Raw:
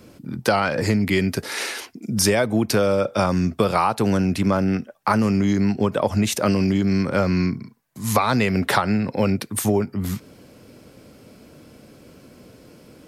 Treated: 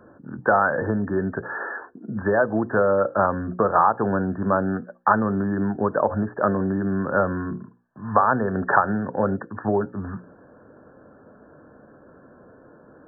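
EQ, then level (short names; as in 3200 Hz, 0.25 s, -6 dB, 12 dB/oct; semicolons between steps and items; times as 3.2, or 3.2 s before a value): brick-wall FIR low-pass 1800 Hz; low shelf 360 Hz -11 dB; notches 60/120/180/240/300/360/420/480/540 Hz; +4.0 dB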